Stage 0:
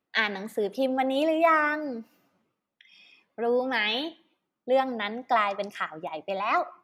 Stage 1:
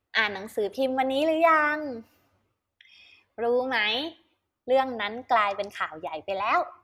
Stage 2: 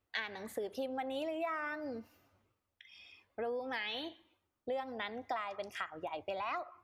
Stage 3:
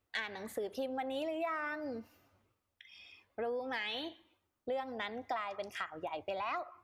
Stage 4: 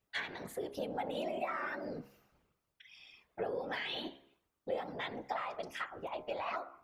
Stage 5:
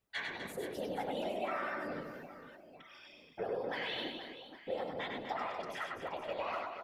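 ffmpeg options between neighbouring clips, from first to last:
-af "lowshelf=f=120:t=q:w=3:g=12.5,volume=1.5dB"
-af "acompressor=threshold=-33dB:ratio=5,volume=-3.5dB"
-af "asoftclip=type=tanh:threshold=-23.5dB,volume=1dB"
-af "afftfilt=real='hypot(re,im)*cos(2*PI*random(0))':imag='hypot(re,im)*sin(2*PI*random(1))':win_size=512:overlap=0.75,bandreject=f=68.35:t=h:w=4,bandreject=f=136.7:t=h:w=4,bandreject=f=205.05:t=h:w=4,bandreject=f=273.4:t=h:w=4,bandreject=f=341.75:t=h:w=4,bandreject=f=410.1:t=h:w=4,bandreject=f=478.45:t=h:w=4,bandreject=f=546.8:t=h:w=4,bandreject=f=615.15:t=h:w=4,bandreject=f=683.5:t=h:w=4,bandreject=f=751.85:t=h:w=4,bandreject=f=820.2:t=h:w=4,bandreject=f=888.55:t=h:w=4,bandreject=f=956.9:t=h:w=4,bandreject=f=1.02525k:t=h:w=4,bandreject=f=1.0936k:t=h:w=4,bandreject=f=1.16195k:t=h:w=4,bandreject=f=1.2303k:t=h:w=4,bandreject=f=1.29865k:t=h:w=4,bandreject=f=1.367k:t=h:w=4,bandreject=f=1.43535k:t=h:w=4,bandreject=f=1.5037k:t=h:w=4,bandreject=f=1.57205k:t=h:w=4,bandreject=f=1.6404k:t=h:w=4,volume=5.5dB"
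-af "aecho=1:1:100|250|475|812.5|1319:0.631|0.398|0.251|0.158|0.1,volume=-1.5dB"

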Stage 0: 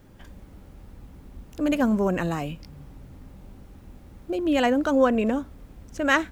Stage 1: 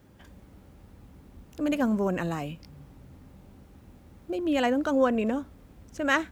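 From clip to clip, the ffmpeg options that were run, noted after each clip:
-af "highpass=56,volume=-3.5dB"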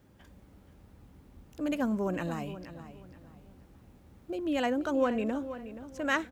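-filter_complex "[0:a]asplit=2[a][b];[b]adelay=477,lowpass=f=4.6k:p=1,volume=-12.5dB,asplit=2[c][d];[d]adelay=477,lowpass=f=4.6k:p=1,volume=0.3,asplit=2[e][f];[f]adelay=477,lowpass=f=4.6k:p=1,volume=0.3[g];[a][c][e][g]amix=inputs=4:normalize=0,volume=-4.5dB"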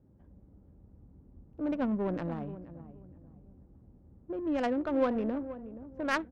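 -af "acrusher=bits=7:mode=log:mix=0:aa=0.000001,equalizer=f=8.2k:t=o:w=0.21:g=4.5,adynamicsmooth=sensitivity=1.5:basefreq=550"

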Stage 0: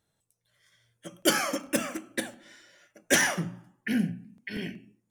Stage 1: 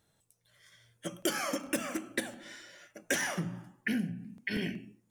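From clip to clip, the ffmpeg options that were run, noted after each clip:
-af "acompressor=threshold=-34dB:ratio=6,volume=4.5dB"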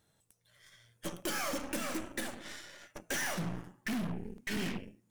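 -af "volume=32dB,asoftclip=hard,volume=-32dB,aeval=exprs='0.0266*(cos(1*acos(clip(val(0)/0.0266,-1,1)))-cos(1*PI/2))+0.0075*(cos(6*acos(clip(val(0)/0.0266,-1,1)))-cos(6*PI/2))':c=same"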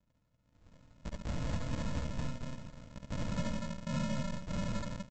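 -af "aresample=16000,acrusher=samples=41:mix=1:aa=0.000001,aresample=44100,aecho=1:1:69.97|242:0.708|0.794,volume=-2dB"

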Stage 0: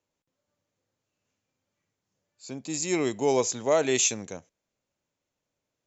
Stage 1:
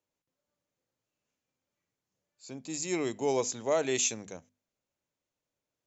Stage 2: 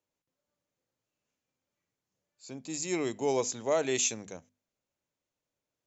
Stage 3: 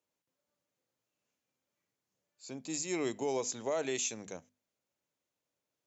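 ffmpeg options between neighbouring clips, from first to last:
-af "bandreject=f=50:t=h:w=6,bandreject=f=100:t=h:w=6,bandreject=f=150:t=h:w=6,bandreject=f=200:t=h:w=6,bandreject=f=250:t=h:w=6,volume=-5dB"
-af anull
-af "highpass=f=130:p=1,alimiter=limit=-24dB:level=0:latency=1:release=189"

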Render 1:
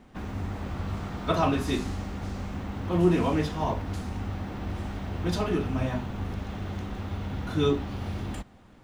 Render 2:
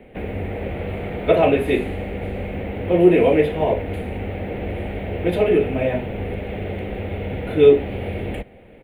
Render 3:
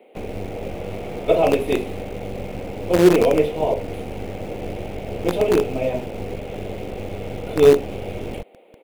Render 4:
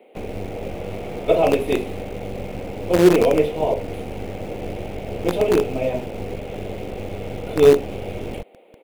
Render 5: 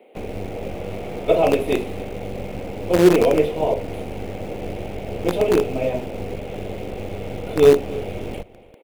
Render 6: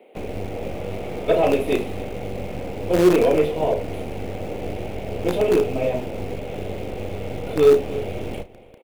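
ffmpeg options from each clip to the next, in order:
-filter_complex "[0:a]firequalizer=gain_entry='entry(280,0);entry(470,13);entry(1100,-11);entry(2200,9);entry(3600,-5);entry(5400,-28);entry(9900,-3)':delay=0.05:min_phase=1,acrossover=split=210|1100[a][b][c];[a]alimiter=level_in=4dB:limit=-24dB:level=0:latency=1:release=182,volume=-4dB[d];[d][b][c]amix=inputs=3:normalize=0,volume=5.5dB"
-filter_complex "[0:a]equalizer=f=1.7k:w=2.4:g=-14.5,acrossover=split=320[a][b];[a]acrusher=bits=4:dc=4:mix=0:aa=0.000001[c];[c][b]amix=inputs=2:normalize=0"
-af anull
-filter_complex "[0:a]asplit=2[a][b];[b]adelay=285.7,volume=-20dB,highshelf=f=4k:g=-6.43[c];[a][c]amix=inputs=2:normalize=0"
-filter_complex "[0:a]asoftclip=type=tanh:threshold=-7.5dB,asplit=2[a][b];[b]adelay=33,volume=-12dB[c];[a][c]amix=inputs=2:normalize=0"

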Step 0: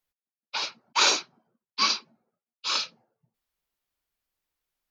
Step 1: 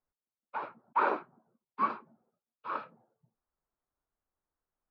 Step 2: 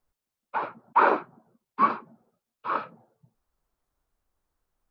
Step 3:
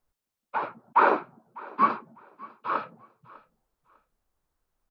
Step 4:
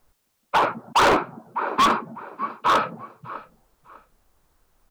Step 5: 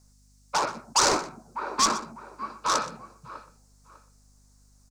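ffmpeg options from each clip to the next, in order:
-af "lowpass=f=1.4k:w=0.5412,lowpass=f=1.4k:w=1.3066"
-af "lowshelf=f=92:g=8.5,volume=8dB"
-af "aecho=1:1:600|1200:0.0794|0.0191"
-filter_complex "[0:a]asplit=2[a][b];[b]acompressor=threshold=-29dB:ratio=6,volume=2dB[c];[a][c]amix=inputs=2:normalize=0,volume=22dB,asoftclip=hard,volume=-22dB,volume=8dB"
-filter_complex "[0:a]acrossover=split=180|7700[a][b][c];[b]aexciter=amount=11.6:drive=7.1:freq=4.8k[d];[a][d][c]amix=inputs=3:normalize=0,aeval=exprs='val(0)+0.00251*(sin(2*PI*50*n/s)+sin(2*PI*2*50*n/s)/2+sin(2*PI*3*50*n/s)/3+sin(2*PI*4*50*n/s)/4+sin(2*PI*5*50*n/s)/5)':c=same,aecho=1:1:123:0.158,volume=-7dB"

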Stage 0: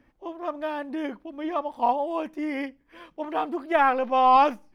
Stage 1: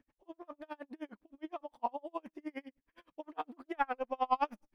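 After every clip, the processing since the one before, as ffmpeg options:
-af "aeval=exprs='val(0)*pow(10,-38*(0.5-0.5*cos(2*PI*9.7*n/s))/20)':c=same,volume=-7.5dB"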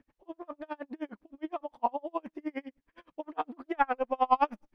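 -af "lowpass=f=2.8k:p=1,volume=6.5dB"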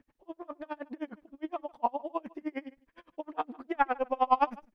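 -filter_complex "[0:a]asplit=2[a][b];[b]adelay=151.6,volume=-24dB,highshelf=f=4k:g=-3.41[c];[a][c]amix=inputs=2:normalize=0"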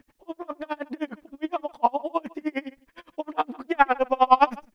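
-af "highshelf=f=2.6k:g=8,volume=7dB"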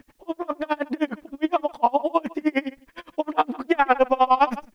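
-af "alimiter=level_in=12.5dB:limit=-1dB:release=50:level=0:latency=1,volume=-6dB"

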